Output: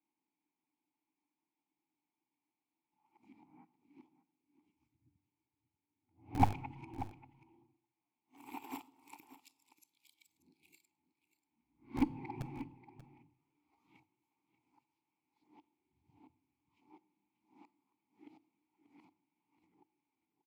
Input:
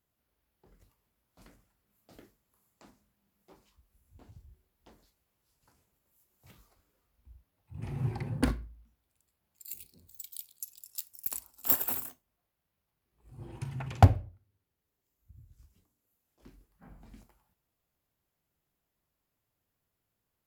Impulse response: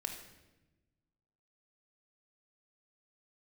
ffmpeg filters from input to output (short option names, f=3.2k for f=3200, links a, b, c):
-filter_complex "[0:a]areverse,bandreject=f=50:t=h:w=6,bandreject=f=100:t=h:w=6,asubboost=boost=6.5:cutoff=83,asplit=3[a][b][c];[a]bandpass=f=300:t=q:w=8,volume=0dB[d];[b]bandpass=f=870:t=q:w=8,volume=-6dB[e];[c]bandpass=f=2.24k:t=q:w=8,volume=-9dB[f];[d][e][f]amix=inputs=3:normalize=0,acrossover=split=130|3300[g][h][i];[g]acrusher=bits=5:dc=4:mix=0:aa=0.000001[j];[j][h][i]amix=inputs=3:normalize=0,aecho=1:1:586:0.188,asplit=2[k][l];[1:a]atrim=start_sample=2205,asetrate=79380,aresample=44100[m];[l][m]afir=irnorm=-1:irlink=0,volume=-5dB[n];[k][n]amix=inputs=2:normalize=0,volume=7dB"